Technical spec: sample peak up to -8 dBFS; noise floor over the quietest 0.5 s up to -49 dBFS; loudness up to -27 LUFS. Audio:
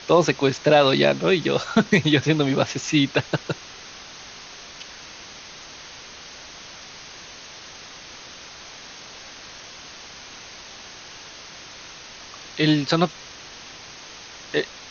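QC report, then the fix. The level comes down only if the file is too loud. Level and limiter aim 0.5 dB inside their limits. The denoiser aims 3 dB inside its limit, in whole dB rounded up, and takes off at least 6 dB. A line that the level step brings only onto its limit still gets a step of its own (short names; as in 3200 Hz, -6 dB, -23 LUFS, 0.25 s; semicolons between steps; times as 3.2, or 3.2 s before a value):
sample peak -4.0 dBFS: fail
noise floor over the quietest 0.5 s -41 dBFS: fail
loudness -20.5 LUFS: fail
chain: denoiser 6 dB, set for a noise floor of -41 dBFS; gain -7 dB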